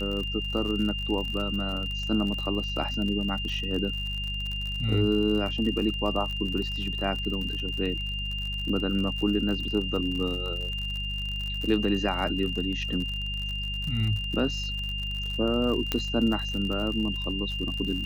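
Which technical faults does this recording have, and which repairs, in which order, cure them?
crackle 55/s -32 dBFS
hum 50 Hz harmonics 4 -34 dBFS
tone 2800 Hz -32 dBFS
15.92 pop -11 dBFS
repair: de-click; de-hum 50 Hz, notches 4; notch 2800 Hz, Q 30

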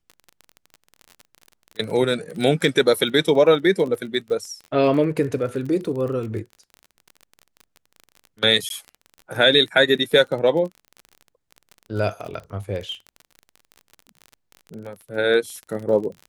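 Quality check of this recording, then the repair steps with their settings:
crackle 31/s -30 dBFS
8.69–8.7 gap 12 ms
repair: de-click; interpolate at 8.69, 12 ms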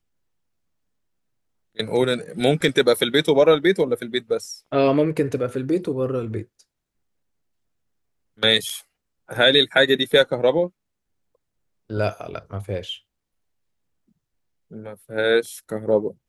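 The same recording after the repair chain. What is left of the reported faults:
none

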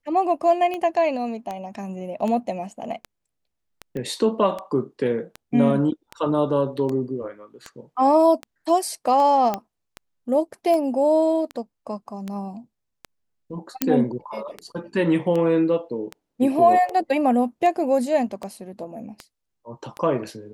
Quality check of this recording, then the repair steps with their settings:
tick 78 rpm -17 dBFS
3.97 pop -21 dBFS
9.54 pop -11 dBFS
13.82 pop -3 dBFS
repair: de-click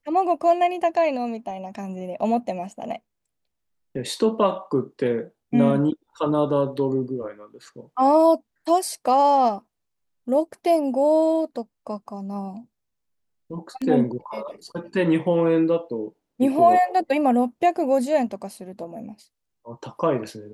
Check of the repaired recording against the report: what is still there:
3.97 pop
13.82 pop

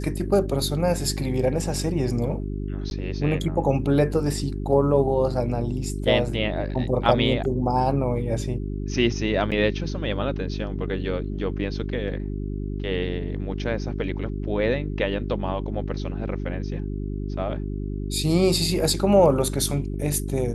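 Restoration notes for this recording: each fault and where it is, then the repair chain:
hum 50 Hz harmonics 8 -29 dBFS
2.9–2.91 gap 11 ms
9.51–9.52 gap 7.9 ms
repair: de-hum 50 Hz, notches 8; interpolate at 2.9, 11 ms; interpolate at 9.51, 7.9 ms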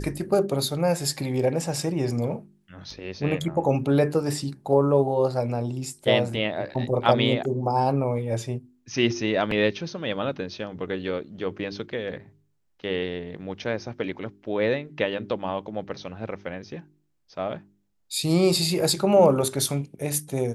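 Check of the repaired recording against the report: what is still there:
none

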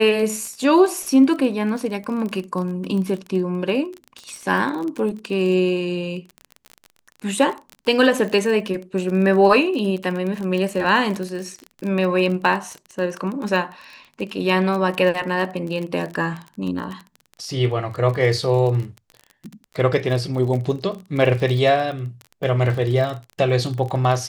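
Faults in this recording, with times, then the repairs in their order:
crackle 26/s -26 dBFS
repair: de-click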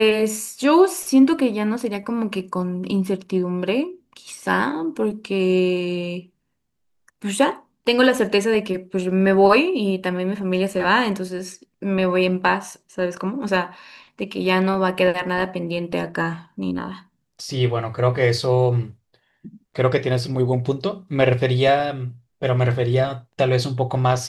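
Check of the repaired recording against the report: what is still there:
none

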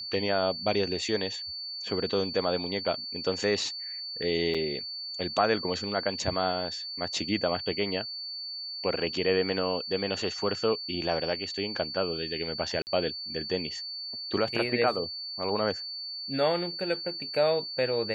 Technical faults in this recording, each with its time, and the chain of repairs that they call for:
tone 4500 Hz -35 dBFS
4.54–4.55 gap 6 ms
12.82–12.87 gap 49 ms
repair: notch 4500 Hz, Q 30; interpolate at 4.54, 6 ms; interpolate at 12.82, 49 ms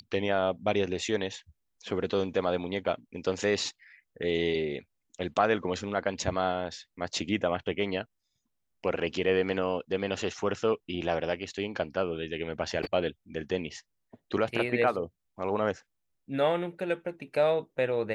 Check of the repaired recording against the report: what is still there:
none

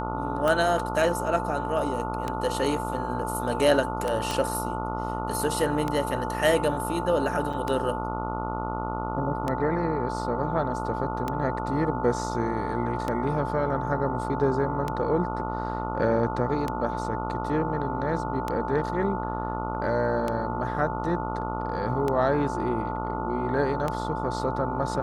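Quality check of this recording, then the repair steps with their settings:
buzz 60 Hz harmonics 24 -32 dBFS
tick 33 1/3 rpm -14 dBFS
tone 880 Hz -32 dBFS
4.31 pop -14 dBFS
7.53–7.54 gap 5 ms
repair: de-click; de-hum 60 Hz, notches 24; notch 880 Hz, Q 30; interpolate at 7.53, 5 ms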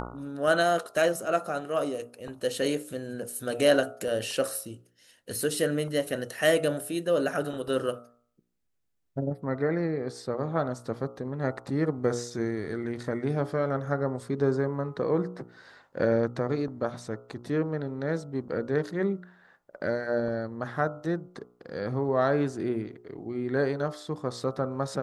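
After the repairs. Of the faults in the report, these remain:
4.31 pop

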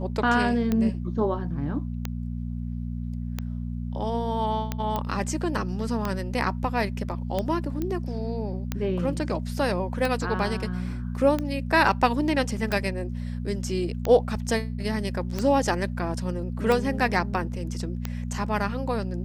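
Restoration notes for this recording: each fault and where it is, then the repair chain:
hum 60 Hz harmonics 4 -31 dBFS
tick 45 rpm -13 dBFS
4.96 pop -15 dBFS
7.82 pop -17 dBFS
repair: de-click; de-hum 60 Hz, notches 4

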